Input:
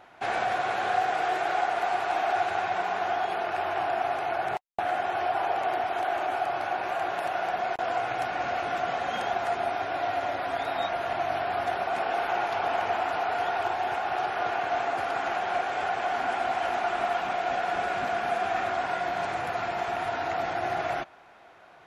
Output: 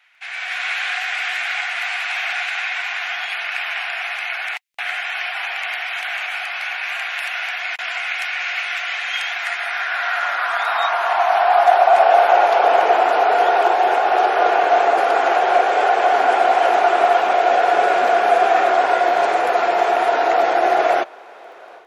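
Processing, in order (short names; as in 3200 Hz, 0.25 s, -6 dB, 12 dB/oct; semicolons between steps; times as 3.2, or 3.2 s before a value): AGC gain up to 12 dB; high-pass sweep 2200 Hz -> 440 Hz, 9.28–12.87; crackle 13/s -41 dBFS; gain -1.5 dB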